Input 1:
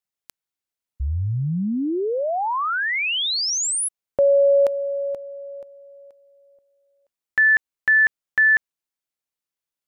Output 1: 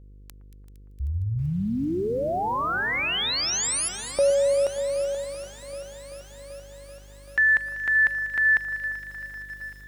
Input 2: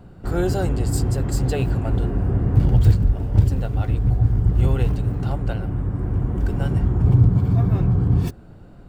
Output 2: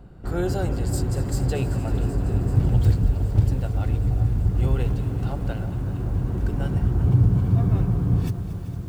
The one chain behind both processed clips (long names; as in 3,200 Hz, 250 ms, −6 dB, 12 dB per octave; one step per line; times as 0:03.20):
delay that swaps between a low-pass and a high-pass 115 ms, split 1,600 Hz, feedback 85%, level −12.5 dB
hum with harmonics 50 Hz, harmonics 10, −44 dBFS −9 dB per octave
feedback echo at a low word length 386 ms, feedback 80%, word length 7 bits, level −15 dB
level −3.5 dB